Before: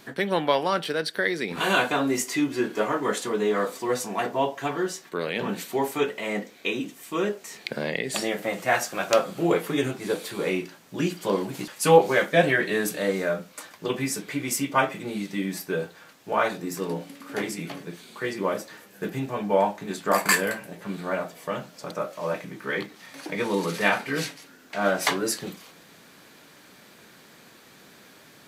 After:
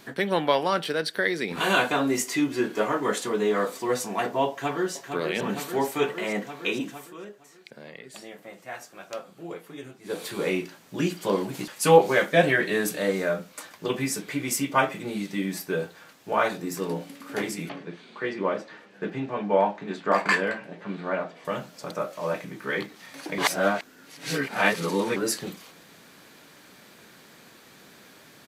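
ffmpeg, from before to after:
-filter_complex "[0:a]asplit=2[s0][s1];[s1]afade=t=in:st=4.49:d=0.01,afade=t=out:st=4.94:d=0.01,aecho=0:1:460|920|1380|1840|2300|2760|3220|3680|4140|4600|5060|5520:0.446684|0.379681|0.322729|0.27432|0.233172|0.198196|0.168467|0.143197|0.121717|0.103459|0.0879406|0.0747495[s2];[s0][s2]amix=inputs=2:normalize=0,asettb=1/sr,asplit=3[s3][s4][s5];[s3]atrim=end=17.694[s6];[s4]atrim=start=17.69:end=21.45,asetpts=PTS-STARTPTS,afade=t=in:d=0.004:c=qsin,afade=t=out:st=3.756:d=0.004:c=qsin,highpass=150,lowpass=3400[s7];[s5]atrim=start=21.446[s8];[s6][s7]acrossfade=d=0.004:c1=hsin:c2=qsin[s9];[s9][s8]acrossfade=d=0.004:c1=qsin:c2=hsin,asplit=5[s10][s11][s12][s13][s14];[s10]atrim=end=7.14,asetpts=PTS-STARTPTS,afade=t=out:st=6.94:d=0.2:silence=0.16788[s15];[s11]atrim=start=7.14:end=10.03,asetpts=PTS-STARTPTS,volume=0.168[s16];[s12]atrim=start=10.03:end=23.382,asetpts=PTS-STARTPTS,afade=t=in:d=0.2:silence=0.16788[s17];[s13]atrim=start=23.378:end=25.162,asetpts=PTS-STARTPTS,areverse[s18];[s14]atrim=start=25.158[s19];[s15][s16][s17]concat=n=3:v=0:a=1[s20];[s20][s18]acrossfade=d=0.004:c1=hsin:c2=hsin[s21];[s21][s19]acrossfade=d=0.004:c1=hsin:c2=hsin"

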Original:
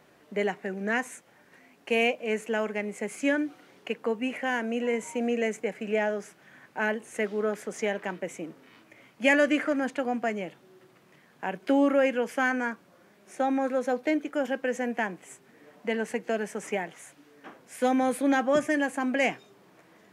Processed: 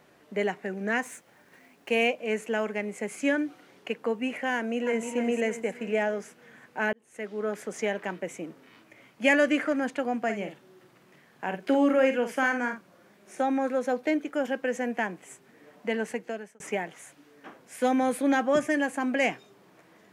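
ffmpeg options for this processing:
-filter_complex "[0:a]asettb=1/sr,asplit=3[s0][s1][s2];[s0]atrim=end=1.034[s3];[s1]atrim=start=1.03:end=1.89,asetpts=PTS-STARTPTS,afade=t=in:d=0.004:c=qsin,afade=t=out:st=0.856:d=0.004:c=qsin,acrusher=bits=3:mode=log:mix=0:aa=0.000001[s4];[s2]atrim=start=1.886[s5];[s3][s4]acrossfade=d=0.004:c1=hsin:c2=qsin[s6];[s6][s5]acrossfade=d=0.004:c1=qsin:c2=hsin,asplit=2[s7][s8];[s8]afade=t=in:st=4.55:d=0.01,afade=t=out:st=5.09:d=0.01,aecho=0:1:310|620|930|1240|1550|1860:0.446684|0.223342|0.111671|0.0558354|0.0279177|0.0139589[s9];[s7][s9]amix=inputs=2:normalize=0,asplit=3[s10][s11][s12];[s10]afade=t=out:st=10.28:d=0.02[s13];[s11]asplit=2[s14][s15];[s15]adelay=49,volume=0.398[s16];[s14][s16]amix=inputs=2:normalize=0,afade=t=in:st=10.28:d=0.02,afade=t=out:st=13.42:d=0.02[s17];[s12]afade=t=in:st=13.42:d=0.02[s18];[s13][s17][s18]amix=inputs=3:normalize=0,asplit=3[s19][s20][s21];[s19]atrim=end=6.93,asetpts=PTS-STARTPTS,afade=t=out:st=6.926:d=0.004:c=hsin[s22];[s20]atrim=start=6.93:end=16.6,asetpts=PTS-STARTPTS,afade=t=in:d=0.69,afade=t=out:st=9.12:d=0.55[s23];[s21]atrim=start=16.6,asetpts=PTS-STARTPTS,afade=t=in:d=0.004:c=hsin[s24];[s22][s23][s24]concat=n=3:v=0:a=1"

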